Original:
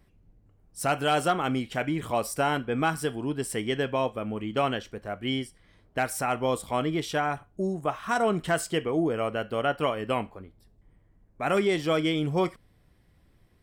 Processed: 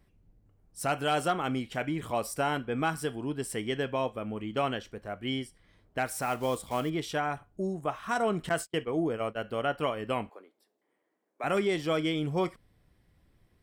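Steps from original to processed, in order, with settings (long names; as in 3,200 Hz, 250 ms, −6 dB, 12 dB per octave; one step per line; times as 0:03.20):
0:06.06–0:06.90: one scale factor per block 5 bits
0:08.49–0:09.44: noise gate −29 dBFS, range −35 dB
0:10.29–0:11.44: high-pass filter 330 Hz 24 dB per octave
level −3.5 dB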